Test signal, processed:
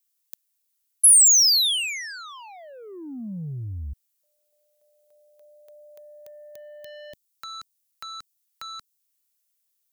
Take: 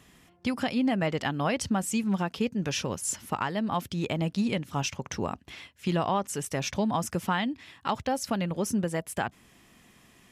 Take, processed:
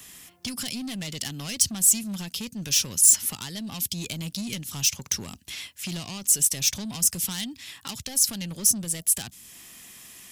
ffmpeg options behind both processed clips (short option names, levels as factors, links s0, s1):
-filter_complex "[0:a]asoftclip=type=tanh:threshold=0.0447,acrossover=split=270|3000[s0][s1][s2];[s1]acompressor=threshold=0.00355:ratio=4[s3];[s0][s3][s2]amix=inputs=3:normalize=0,crystalizer=i=7:c=0"